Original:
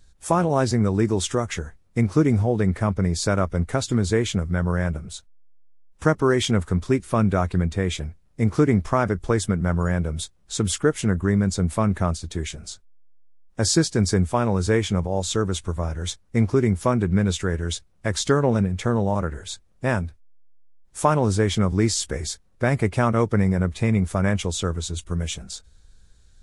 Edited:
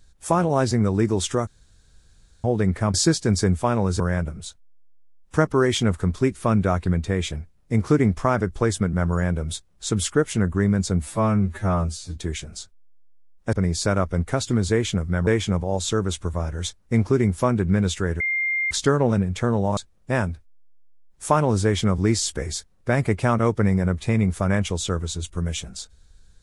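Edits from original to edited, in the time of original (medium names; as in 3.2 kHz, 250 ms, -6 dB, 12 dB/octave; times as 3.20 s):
1.47–2.44 s: room tone
2.94–4.68 s: swap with 13.64–14.70 s
11.70–12.27 s: stretch 2×
17.63–18.14 s: bleep 2.11 kHz -20.5 dBFS
19.20–19.51 s: delete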